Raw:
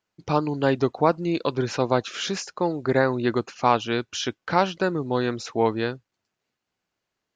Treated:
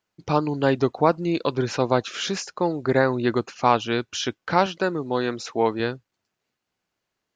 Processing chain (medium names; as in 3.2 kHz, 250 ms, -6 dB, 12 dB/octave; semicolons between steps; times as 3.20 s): 4.66–5.80 s: high-pass 200 Hz 6 dB/octave; trim +1 dB